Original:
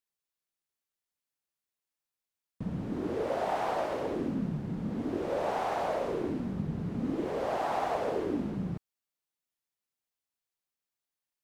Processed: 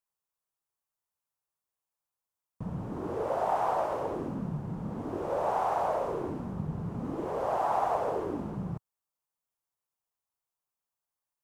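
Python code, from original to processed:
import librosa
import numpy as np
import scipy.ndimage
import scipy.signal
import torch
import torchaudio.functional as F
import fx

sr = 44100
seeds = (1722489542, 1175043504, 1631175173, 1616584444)

y = fx.graphic_eq_10(x, sr, hz=(125, 250, 1000, 2000, 4000), db=(3, -6, 7, -6, -7))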